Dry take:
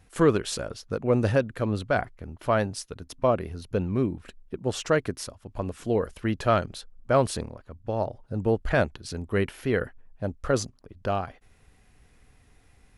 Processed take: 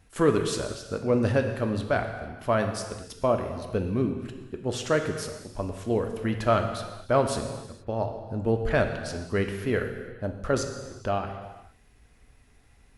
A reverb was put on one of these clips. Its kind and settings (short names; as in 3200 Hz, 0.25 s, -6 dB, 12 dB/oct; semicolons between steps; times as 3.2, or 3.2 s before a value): non-linear reverb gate 0.49 s falling, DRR 4.5 dB; gain -1.5 dB